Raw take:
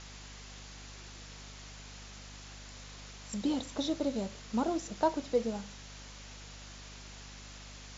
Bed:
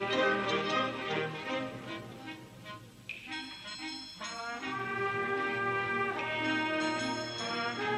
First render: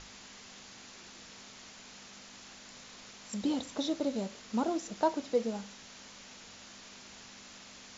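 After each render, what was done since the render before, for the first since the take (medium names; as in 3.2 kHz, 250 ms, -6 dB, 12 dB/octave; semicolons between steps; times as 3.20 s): hum notches 50/100/150 Hz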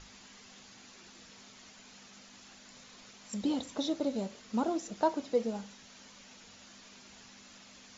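noise reduction 6 dB, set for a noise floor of -52 dBFS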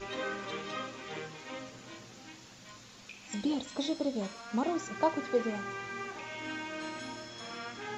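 add bed -8 dB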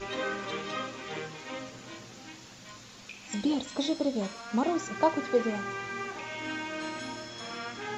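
trim +3.5 dB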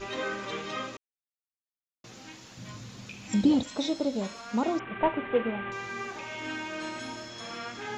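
0.97–2.04 s: mute; 2.57–3.63 s: peaking EQ 120 Hz +13.5 dB 2.3 oct; 4.79–5.72 s: CVSD coder 16 kbps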